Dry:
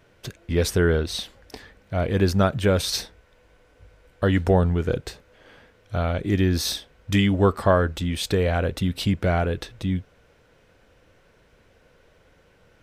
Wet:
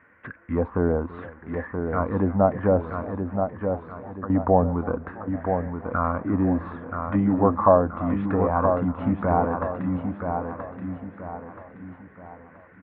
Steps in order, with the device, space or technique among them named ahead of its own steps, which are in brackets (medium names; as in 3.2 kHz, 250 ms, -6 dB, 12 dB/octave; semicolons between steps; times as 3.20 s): envelope filter bass rig (touch-sensitive low-pass 710–1900 Hz down, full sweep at -15 dBFS; cabinet simulation 82–2300 Hz, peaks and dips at 130 Hz -10 dB, 260 Hz +7 dB, 390 Hz -8 dB, 660 Hz -5 dB, 1.1 kHz +7 dB); 2.94–4.30 s: pre-emphasis filter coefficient 0.8; feedback delay 977 ms, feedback 39%, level -6 dB; modulated delay 331 ms, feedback 69%, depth 154 cents, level -19 dB; trim -2 dB